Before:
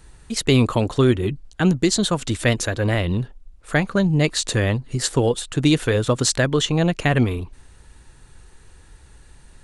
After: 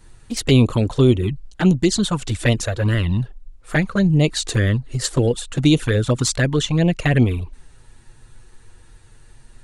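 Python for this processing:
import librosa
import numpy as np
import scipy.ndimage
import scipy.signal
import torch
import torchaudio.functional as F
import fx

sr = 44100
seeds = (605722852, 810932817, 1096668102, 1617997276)

y = fx.low_shelf(x, sr, hz=130.0, db=3.5)
y = fx.env_flanger(y, sr, rest_ms=10.1, full_db=-12.0)
y = y * librosa.db_to_amplitude(2.0)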